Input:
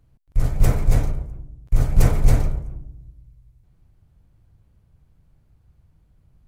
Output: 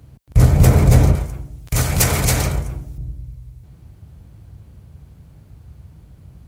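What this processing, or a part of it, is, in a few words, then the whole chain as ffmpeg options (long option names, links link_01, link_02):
mastering chain: -filter_complex "[0:a]highpass=frequency=54:width=0.5412,highpass=frequency=54:width=1.3066,equalizer=frequency=1400:width_type=o:width=2.4:gain=-3,acompressor=threshold=-22dB:ratio=2.5,alimiter=level_in=18dB:limit=-1dB:release=50:level=0:latency=1,asettb=1/sr,asplit=3[link_01][link_02][link_03];[link_01]atrim=end=1.154[link_04];[link_02]atrim=start=1.15:end=2.98,asetpts=PTS-STARTPTS,afade=type=in:duration=0.004:curve=qsin,afade=type=out:start_time=1.826:duration=0.004:curve=qsin,tiltshelf=frequency=920:gain=-8.5[link_05];[link_03]atrim=start=2.976[link_06];[link_04][link_05]acrossfade=duration=0.004:curve1=hsin:curve2=qsin[link_07];[link_07][link_06]acrossfade=duration=0.004:curve1=qsin:curve2=hsin,volume=-1dB"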